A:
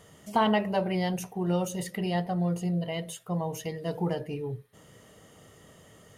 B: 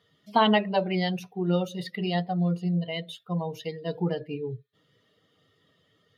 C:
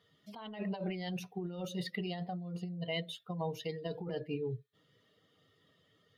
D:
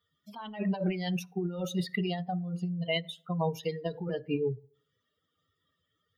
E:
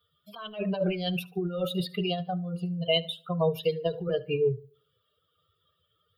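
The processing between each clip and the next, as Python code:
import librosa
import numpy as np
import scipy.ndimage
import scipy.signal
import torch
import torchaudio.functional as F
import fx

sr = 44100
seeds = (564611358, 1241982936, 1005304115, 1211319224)

y1 = fx.bin_expand(x, sr, power=1.5)
y1 = scipy.signal.sosfilt(scipy.signal.butter(4, 130.0, 'highpass', fs=sr, output='sos'), y1)
y1 = fx.high_shelf_res(y1, sr, hz=5600.0, db=-12.0, q=3.0)
y1 = F.gain(torch.from_numpy(y1), 4.0).numpy()
y2 = fx.over_compress(y1, sr, threshold_db=-31.0, ratio=-1.0)
y2 = F.gain(torch.from_numpy(y2), -7.5).numpy()
y3 = fx.bin_expand(y2, sr, power=1.5)
y3 = fx.rev_fdn(y3, sr, rt60_s=0.54, lf_ratio=0.85, hf_ratio=0.5, size_ms=34.0, drr_db=18.0)
y3 = fx.end_taper(y3, sr, db_per_s=260.0)
y3 = F.gain(torch.from_numpy(y3), 8.5).numpy()
y4 = fx.fixed_phaser(y3, sr, hz=1300.0, stages=8)
y4 = fx.echo_feedback(y4, sr, ms=73, feedback_pct=31, wet_db=-22.5)
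y4 = F.gain(torch.from_numpy(y4), 7.5).numpy()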